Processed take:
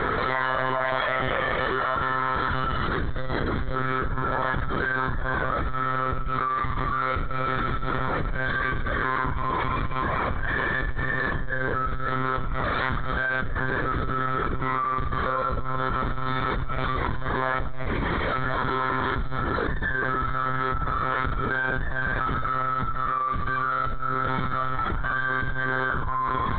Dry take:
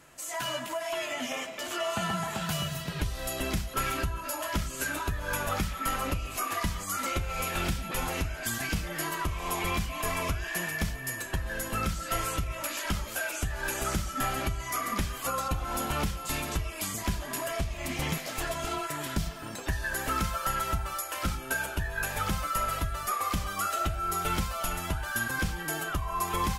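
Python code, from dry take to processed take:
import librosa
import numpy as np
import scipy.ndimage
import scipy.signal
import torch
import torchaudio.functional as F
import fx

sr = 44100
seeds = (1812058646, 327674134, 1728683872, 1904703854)

y = fx.low_shelf(x, sr, hz=130.0, db=3.5)
y = fx.cheby_harmonics(y, sr, harmonics=(3, 6), levels_db=(-31, -23), full_scale_db=-14.5)
y = fx.fixed_phaser(y, sr, hz=730.0, stages=6)
y = fx.doubler(y, sr, ms=33.0, db=-2.5)
y = y + 10.0 ** (-19.5 / 20.0) * np.pad(y, (int(466 * sr / 1000.0), 0))[:len(y)]
y = fx.rev_schroeder(y, sr, rt60_s=1.0, comb_ms=28, drr_db=8.0)
y = fx.lpc_monotone(y, sr, seeds[0], pitch_hz=130.0, order=16)
y = fx.env_flatten(y, sr, amount_pct=100)
y = y * librosa.db_to_amplitude(-1.0)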